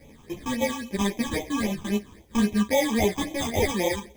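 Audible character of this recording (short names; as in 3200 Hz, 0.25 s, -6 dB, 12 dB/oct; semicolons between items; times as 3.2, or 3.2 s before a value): aliases and images of a low sample rate 1400 Hz, jitter 0%; phasing stages 8, 3.7 Hz, lowest notch 570–1500 Hz; a quantiser's noise floor 12-bit, dither triangular; a shimmering, thickened sound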